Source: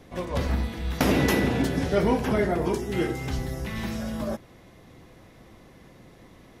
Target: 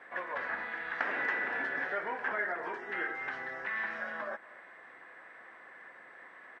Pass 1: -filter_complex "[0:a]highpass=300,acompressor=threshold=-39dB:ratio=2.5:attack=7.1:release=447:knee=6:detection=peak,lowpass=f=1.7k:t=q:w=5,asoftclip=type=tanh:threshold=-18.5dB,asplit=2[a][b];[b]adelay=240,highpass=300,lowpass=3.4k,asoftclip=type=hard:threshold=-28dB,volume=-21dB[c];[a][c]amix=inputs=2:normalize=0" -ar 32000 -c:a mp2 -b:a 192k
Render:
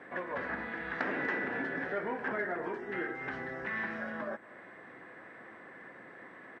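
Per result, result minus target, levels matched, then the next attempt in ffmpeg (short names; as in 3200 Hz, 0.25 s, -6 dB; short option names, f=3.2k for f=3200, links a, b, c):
250 Hz band +10.5 dB; soft clip: distortion +11 dB
-filter_complex "[0:a]highpass=710,acompressor=threshold=-39dB:ratio=2.5:attack=7.1:release=447:knee=6:detection=peak,lowpass=f=1.7k:t=q:w=5,asoftclip=type=tanh:threshold=-18.5dB,asplit=2[a][b];[b]adelay=240,highpass=300,lowpass=3.4k,asoftclip=type=hard:threshold=-28dB,volume=-21dB[c];[a][c]amix=inputs=2:normalize=0" -ar 32000 -c:a mp2 -b:a 192k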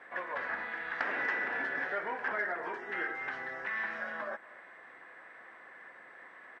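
soft clip: distortion +11 dB
-filter_complex "[0:a]highpass=710,acompressor=threshold=-39dB:ratio=2.5:attack=7.1:release=447:knee=6:detection=peak,lowpass=f=1.7k:t=q:w=5,asoftclip=type=tanh:threshold=-12dB,asplit=2[a][b];[b]adelay=240,highpass=300,lowpass=3.4k,asoftclip=type=hard:threshold=-28dB,volume=-21dB[c];[a][c]amix=inputs=2:normalize=0" -ar 32000 -c:a mp2 -b:a 192k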